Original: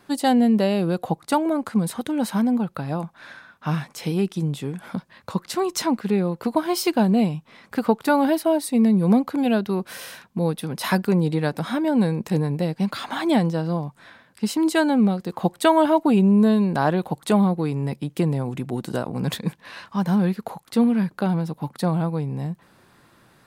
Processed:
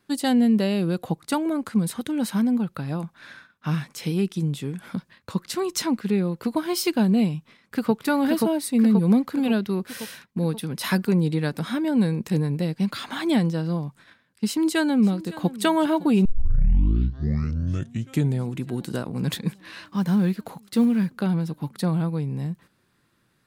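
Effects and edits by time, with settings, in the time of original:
7.36–7.94 s: echo throw 530 ms, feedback 60%, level -2 dB
14.46–15.53 s: echo throw 560 ms, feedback 80%, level -18 dB
16.25 s: tape start 2.26 s
19.83–21.11 s: block-companded coder 7-bit
whole clip: gate -45 dBFS, range -10 dB; peaking EQ 750 Hz -8 dB 1.3 oct

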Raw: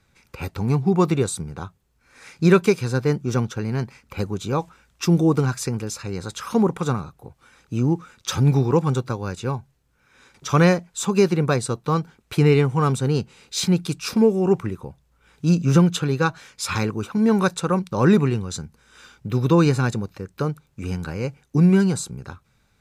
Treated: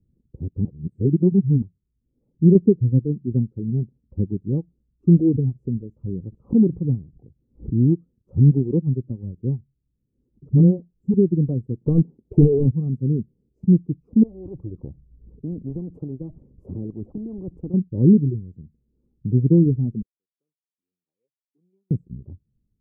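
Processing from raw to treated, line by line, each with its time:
0.65–1.62 s: reverse
2.55–3.05 s: gain +4.5 dB
5.19–7.75 s: swell ahead of each attack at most 99 dB/s
10.49–11.14 s: phase dispersion highs, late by 46 ms, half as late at 370 Hz
11.81–12.71 s: overdrive pedal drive 29 dB, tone 6.9 kHz, clips at -5.5 dBFS
14.23–17.74 s: spectrum-flattening compressor 4:1
20.02–21.91 s: ladder band-pass 2.6 kHz, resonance 70%
whole clip: inverse Chebyshev low-pass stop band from 1.5 kHz, stop band 70 dB; reverb removal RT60 1.6 s; level rider gain up to 5 dB

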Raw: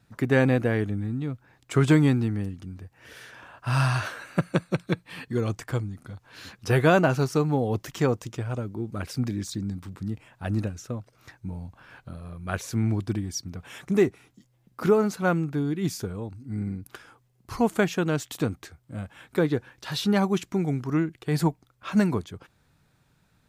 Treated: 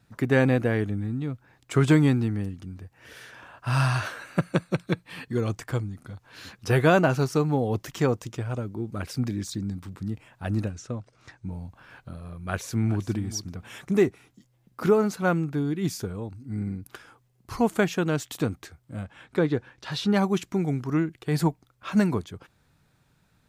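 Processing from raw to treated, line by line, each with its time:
10.71–11.51 s: low-pass 8.8 kHz 24 dB/octave
12.41–13.08 s: echo throw 410 ms, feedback 10%, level -14 dB
19.03–20.14 s: distance through air 52 m

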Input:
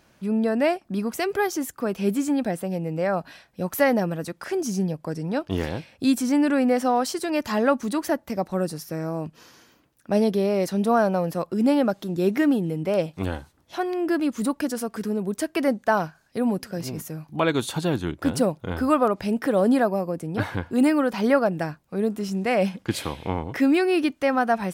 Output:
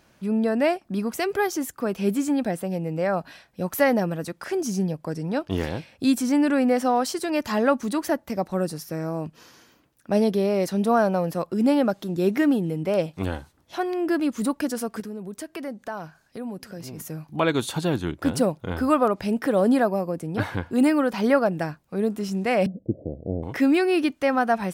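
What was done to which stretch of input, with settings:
15.00–17.00 s: compression 2:1, threshold -38 dBFS
22.66–23.43 s: steep low-pass 660 Hz 72 dB/octave

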